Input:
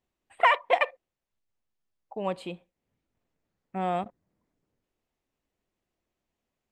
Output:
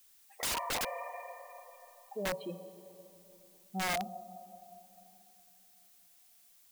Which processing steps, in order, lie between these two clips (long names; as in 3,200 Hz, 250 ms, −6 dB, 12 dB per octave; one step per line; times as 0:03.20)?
expanding power law on the bin magnitudes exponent 2.4
on a send at −10.5 dB: convolution reverb RT60 3.2 s, pre-delay 23 ms
on the sum: wrap-around overflow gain 24.5 dB
background noise blue −59 dBFS
level −4 dB